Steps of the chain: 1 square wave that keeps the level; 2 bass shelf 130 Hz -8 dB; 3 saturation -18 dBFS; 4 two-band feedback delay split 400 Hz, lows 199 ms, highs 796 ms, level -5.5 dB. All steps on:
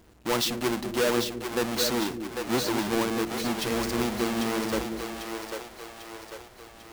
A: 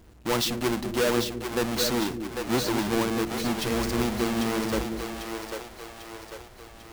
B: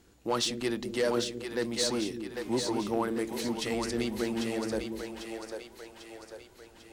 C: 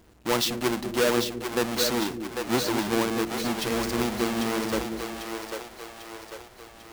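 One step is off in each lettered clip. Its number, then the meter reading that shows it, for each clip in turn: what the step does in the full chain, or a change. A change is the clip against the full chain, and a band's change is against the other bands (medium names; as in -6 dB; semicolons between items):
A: 2, 125 Hz band +4.0 dB; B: 1, distortion -5 dB; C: 3, distortion -19 dB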